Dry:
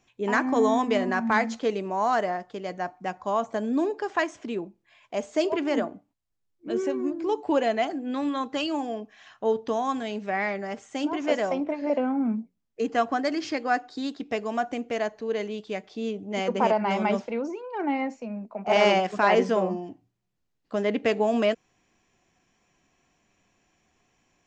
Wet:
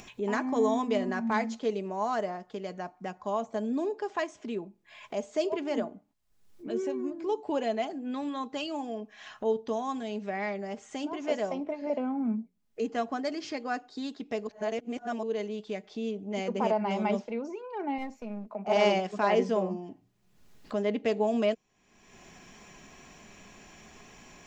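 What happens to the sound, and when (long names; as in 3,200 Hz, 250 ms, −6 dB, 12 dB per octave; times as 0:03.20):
0:14.47–0:15.23: reverse
0:17.98–0:18.47: gain on one half-wave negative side −7 dB
whole clip: upward compression, threshold −29 dBFS; comb filter 4.8 ms, depth 32%; dynamic equaliser 1,600 Hz, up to −5 dB, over −41 dBFS, Q 1.2; level −5 dB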